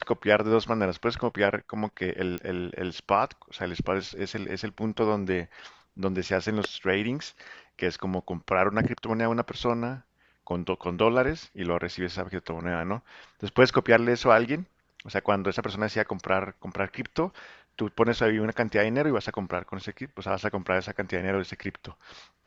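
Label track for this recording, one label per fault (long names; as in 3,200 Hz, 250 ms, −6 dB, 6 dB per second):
2.380000	2.380000	click −19 dBFS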